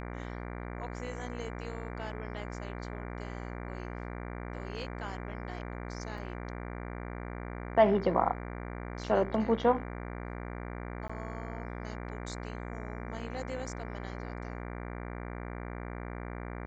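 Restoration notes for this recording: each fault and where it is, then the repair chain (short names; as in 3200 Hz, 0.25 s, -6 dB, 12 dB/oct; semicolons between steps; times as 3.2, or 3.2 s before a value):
buzz 60 Hz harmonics 39 -40 dBFS
6.18 gap 2.4 ms
11.08–11.1 gap 15 ms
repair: de-hum 60 Hz, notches 39; interpolate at 6.18, 2.4 ms; interpolate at 11.08, 15 ms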